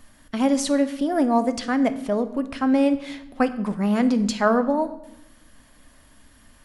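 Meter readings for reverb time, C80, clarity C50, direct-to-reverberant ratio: 0.90 s, 16.5 dB, 14.0 dB, 9.5 dB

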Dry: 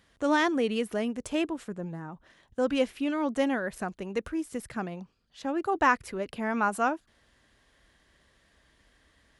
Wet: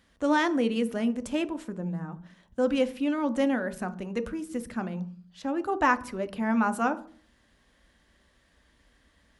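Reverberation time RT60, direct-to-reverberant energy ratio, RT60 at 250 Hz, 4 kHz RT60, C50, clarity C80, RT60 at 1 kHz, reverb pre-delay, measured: 0.45 s, 10.0 dB, 0.75 s, 0.40 s, 16.5 dB, 22.0 dB, 0.40 s, 3 ms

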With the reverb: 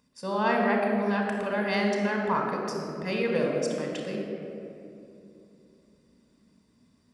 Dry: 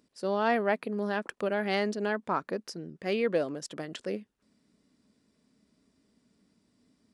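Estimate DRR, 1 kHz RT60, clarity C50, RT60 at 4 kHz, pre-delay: 1.0 dB, 2.4 s, 2.0 dB, 1.4 s, 28 ms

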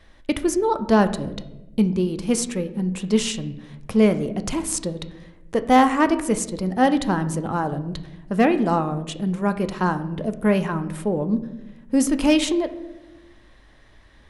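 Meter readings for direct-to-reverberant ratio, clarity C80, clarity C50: 9.0 dB, 15.5 dB, 13.5 dB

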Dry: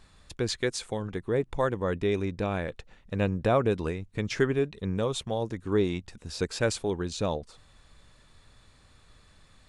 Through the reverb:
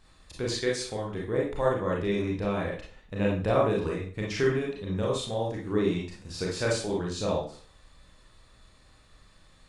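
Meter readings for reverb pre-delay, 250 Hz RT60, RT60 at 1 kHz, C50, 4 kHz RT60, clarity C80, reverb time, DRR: 28 ms, 0.40 s, 0.45 s, 2.5 dB, 0.40 s, 9.5 dB, 0.45 s, -3.5 dB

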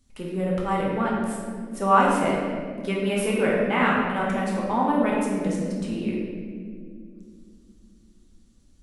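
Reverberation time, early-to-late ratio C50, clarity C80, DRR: 2.3 s, -0.5 dB, 1.5 dB, -4.5 dB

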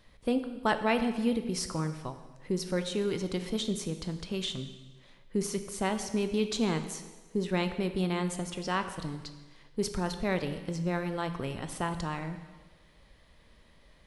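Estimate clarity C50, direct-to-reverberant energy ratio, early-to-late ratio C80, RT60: 10.0 dB, 8.0 dB, 11.5 dB, 1.3 s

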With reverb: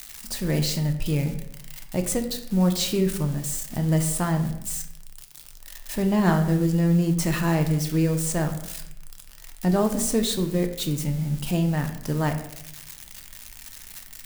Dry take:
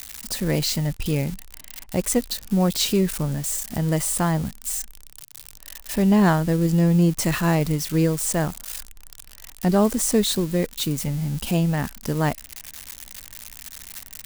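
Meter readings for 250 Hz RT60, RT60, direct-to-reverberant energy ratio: 0.85 s, 0.75 s, 5.0 dB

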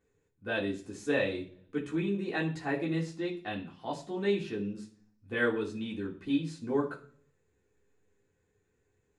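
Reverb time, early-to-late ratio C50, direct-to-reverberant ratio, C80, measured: 0.45 s, 11.0 dB, -4.0 dB, 16.0 dB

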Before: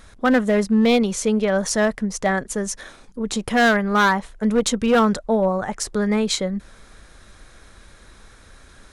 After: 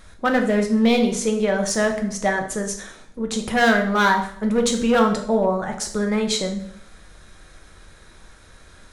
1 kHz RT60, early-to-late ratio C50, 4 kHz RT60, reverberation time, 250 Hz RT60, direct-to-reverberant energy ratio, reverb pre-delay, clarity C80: 0.60 s, 8.5 dB, 0.55 s, 0.65 s, 0.65 s, 3.0 dB, 3 ms, 12.5 dB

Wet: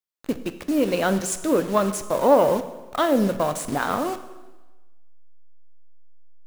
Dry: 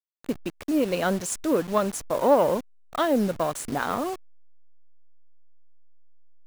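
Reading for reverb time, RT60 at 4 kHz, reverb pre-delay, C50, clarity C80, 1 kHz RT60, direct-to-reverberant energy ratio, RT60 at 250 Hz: 1.2 s, 1.1 s, 5 ms, 12.0 dB, 14.0 dB, 1.2 s, 10.0 dB, 1.2 s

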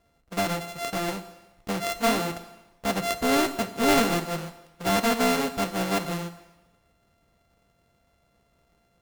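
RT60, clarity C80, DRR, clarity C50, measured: 1.1 s, 14.5 dB, 11.5 dB, 13.0 dB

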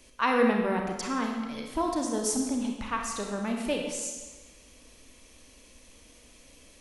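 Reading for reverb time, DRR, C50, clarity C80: 1.3 s, 1.0 dB, 3.0 dB, 5.0 dB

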